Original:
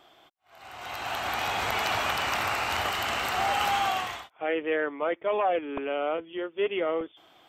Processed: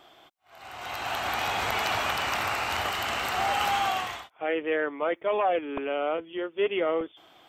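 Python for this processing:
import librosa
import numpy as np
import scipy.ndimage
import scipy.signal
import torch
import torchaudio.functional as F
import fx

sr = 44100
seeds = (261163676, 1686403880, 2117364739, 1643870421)

p1 = fx.rider(x, sr, range_db=5, speed_s=2.0)
p2 = x + F.gain(torch.from_numpy(p1), -2.0).numpy()
p3 = fx.high_shelf(p2, sr, hz=8400.0, db=8.5, at=(4.93, 5.87))
y = F.gain(torch.from_numpy(p3), -5.0).numpy()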